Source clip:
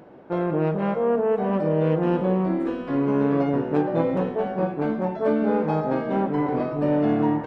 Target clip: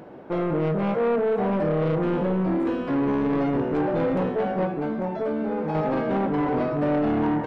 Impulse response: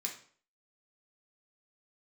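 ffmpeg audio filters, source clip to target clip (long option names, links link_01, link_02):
-filter_complex "[0:a]asplit=2[link_01][link_02];[link_02]alimiter=limit=-16.5dB:level=0:latency=1:release=23,volume=0dB[link_03];[link_01][link_03]amix=inputs=2:normalize=0,asettb=1/sr,asplit=3[link_04][link_05][link_06];[link_04]atrim=end=4.654[link_07];[link_05]atrim=start=4.65:end=5.75,asetpts=PTS-STARTPTS,afade=type=in:duration=0.004:curve=qsin,afade=type=out:start_time=1.096:duration=0.004:curve=qsin,acompressor=threshold=-20dB:ratio=6[link_08];[link_06]atrim=start=5.746[link_09];[link_07][link_08]acrossfade=duration=0.004:curve1=hsin:curve2=qsin[link_10];[link_10][link_09]acrossfade=duration=0.004:curve1=qsin:curve2=hsin,asoftclip=type=tanh:threshold=-16.5dB,volume=-2dB"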